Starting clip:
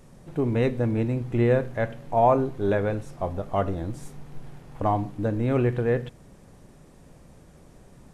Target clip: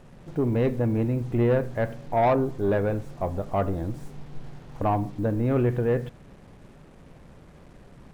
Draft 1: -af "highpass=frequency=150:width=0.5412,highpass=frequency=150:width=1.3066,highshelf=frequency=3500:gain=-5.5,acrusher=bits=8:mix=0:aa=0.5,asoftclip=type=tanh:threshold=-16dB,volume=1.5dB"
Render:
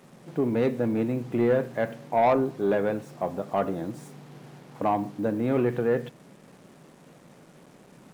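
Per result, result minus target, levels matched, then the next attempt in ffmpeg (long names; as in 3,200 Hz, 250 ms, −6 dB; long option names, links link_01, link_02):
125 Hz band −7.0 dB; 8,000 Hz band +4.0 dB
-af "highshelf=frequency=3500:gain=-5.5,acrusher=bits=8:mix=0:aa=0.5,asoftclip=type=tanh:threshold=-16dB,volume=1.5dB"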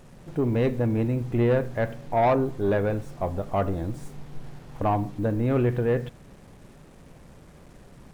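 8,000 Hz band +2.5 dB
-af "highshelf=frequency=3500:gain=-13.5,acrusher=bits=8:mix=0:aa=0.5,asoftclip=type=tanh:threshold=-16dB,volume=1.5dB"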